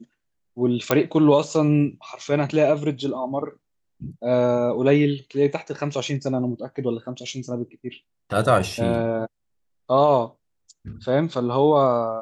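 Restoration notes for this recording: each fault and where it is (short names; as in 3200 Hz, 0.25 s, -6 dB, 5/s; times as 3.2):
0.91 pop -3 dBFS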